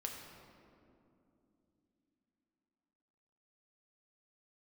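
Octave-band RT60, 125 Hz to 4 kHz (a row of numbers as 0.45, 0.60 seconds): 3.7, 4.6, 3.3, 2.4, 1.8, 1.3 seconds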